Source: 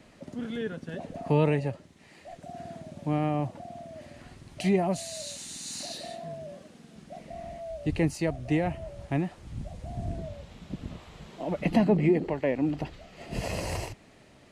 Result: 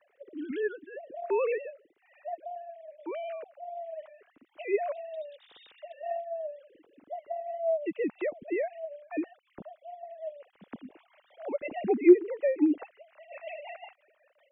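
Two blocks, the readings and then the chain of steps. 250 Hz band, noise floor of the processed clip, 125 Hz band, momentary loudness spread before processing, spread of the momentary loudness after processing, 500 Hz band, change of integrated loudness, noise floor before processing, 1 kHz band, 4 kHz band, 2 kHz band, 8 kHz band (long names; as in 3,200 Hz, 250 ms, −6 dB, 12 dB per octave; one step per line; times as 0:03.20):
−2.0 dB, −70 dBFS, below −25 dB, 20 LU, 20 LU, +1.5 dB, −1.0 dB, −56 dBFS, −2.5 dB, below −15 dB, −3.0 dB, below −40 dB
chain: three sine waves on the formant tracks
rotating-speaker cabinet horn 1.2 Hz, later 5.5 Hz, at 0:05.69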